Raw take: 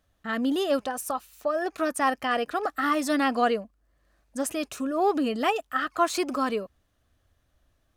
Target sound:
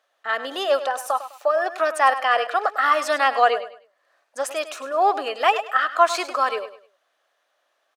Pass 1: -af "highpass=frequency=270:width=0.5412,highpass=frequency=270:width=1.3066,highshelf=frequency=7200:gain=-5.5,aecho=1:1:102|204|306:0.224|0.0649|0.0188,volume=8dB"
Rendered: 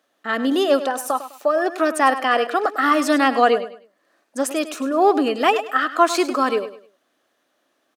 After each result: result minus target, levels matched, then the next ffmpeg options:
250 Hz band +16.0 dB; 8,000 Hz band +2.5 dB
-af "highpass=frequency=540:width=0.5412,highpass=frequency=540:width=1.3066,highshelf=frequency=7200:gain=-5.5,aecho=1:1:102|204|306:0.224|0.0649|0.0188,volume=8dB"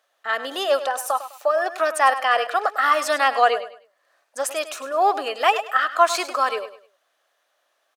8,000 Hz band +4.0 dB
-af "highpass=frequency=540:width=0.5412,highpass=frequency=540:width=1.3066,highshelf=frequency=7200:gain=-13.5,aecho=1:1:102|204|306:0.224|0.0649|0.0188,volume=8dB"

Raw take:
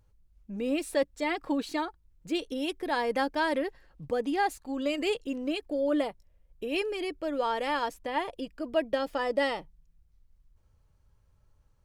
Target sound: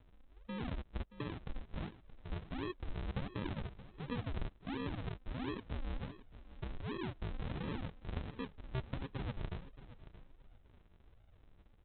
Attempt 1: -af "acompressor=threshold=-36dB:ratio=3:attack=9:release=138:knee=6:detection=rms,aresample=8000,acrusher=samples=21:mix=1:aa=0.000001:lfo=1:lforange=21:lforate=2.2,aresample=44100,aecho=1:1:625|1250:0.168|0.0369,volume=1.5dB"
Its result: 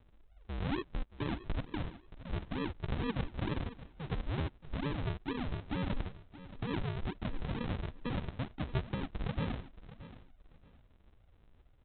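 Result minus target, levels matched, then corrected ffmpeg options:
sample-and-hold swept by an LFO: distortion +10 dB; downward compressor: peak gain reduction −4.5 dB
-af "acompressor=threshold=-43dB:ratio=3:attack=9:release=138:knee=6:detection=rms,aresample=8000,acrusher=samples=21:mix=1:aa=0.000001:lfo=1:lforange=21:lforate=1.4,aresample=44100,aecho=1:1:625|1250:0.168|0.0369,volume=1.5dB"

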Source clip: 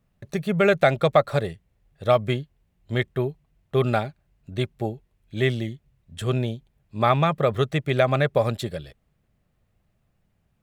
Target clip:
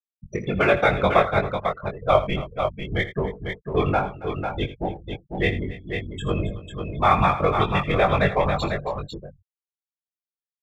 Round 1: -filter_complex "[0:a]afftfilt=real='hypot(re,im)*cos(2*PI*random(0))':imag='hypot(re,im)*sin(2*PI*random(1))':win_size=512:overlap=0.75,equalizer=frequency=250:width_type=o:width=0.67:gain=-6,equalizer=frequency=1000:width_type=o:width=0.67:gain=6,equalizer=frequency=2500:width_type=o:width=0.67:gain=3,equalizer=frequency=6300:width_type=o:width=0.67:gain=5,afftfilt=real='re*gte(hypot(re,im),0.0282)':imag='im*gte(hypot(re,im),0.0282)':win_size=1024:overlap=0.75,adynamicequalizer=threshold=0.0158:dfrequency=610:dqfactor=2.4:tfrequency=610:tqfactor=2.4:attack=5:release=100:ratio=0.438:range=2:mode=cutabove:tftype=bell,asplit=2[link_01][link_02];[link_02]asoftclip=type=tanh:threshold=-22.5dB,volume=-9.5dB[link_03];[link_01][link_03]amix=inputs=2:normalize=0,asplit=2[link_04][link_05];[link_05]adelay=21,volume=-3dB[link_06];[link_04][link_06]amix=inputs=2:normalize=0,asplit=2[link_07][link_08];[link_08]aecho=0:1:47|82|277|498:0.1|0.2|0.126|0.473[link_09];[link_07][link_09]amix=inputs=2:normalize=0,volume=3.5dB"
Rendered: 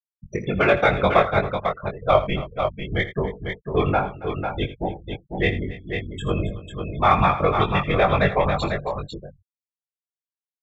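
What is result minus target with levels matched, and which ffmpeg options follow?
soft clipping: distortion −6 dB
-filter_complex "[0:a]afftfilt=real='hypot(re,im)*cos(2*PI*random(0))':imag='hypot(re,im)*sin(2*PI*random(1))':win_size=512:overlap=0.75,equalizer=frequency=250:width_type=o:width=0.67:gain=-6,equalizer=frequency=1000:width_type=o:width=0.67:gain=6,equalizer=frequency=2500:width_type=o:width=0.67:gain=3,equalizer=frequency=6300:width_type=o:width=0.67:gain=5,afftfilt=real='re*gte(hypot(re,im),0.0282)':imag='im*gte(hypot(re,im),0.0282)':win_size=1024:overlap=0.75,adynamicequalizer=threshold=0.0158:dfrequency=610:dqfactor=2.4:tfrequency=610:tqfactor=2.4:attack=5:release=100:ratio=0.438:range=2:mode=cutabove:tftype=bell,asplit=2[link_01][link_02];[link_02]asoftclip=type=tanh:threshold=-32.5dB,volume=-9.5dB[link_03];[link_01][link_03]amix=inputs=2:normalize=0,asplit=2[link_04][link_05];[link_05]adelay=21,volume=-3dB[link_06];[link_04][link_06]amix=inputs=2:normalize=0,asplit=2[link_07][link_08];[link_08]aecho=0:1:47|82|277|498:0.1|0.2|0.126|0.473[link_09];[link_07][link_09]amix=inputs=2:normalize=0,volume=3.5dB"

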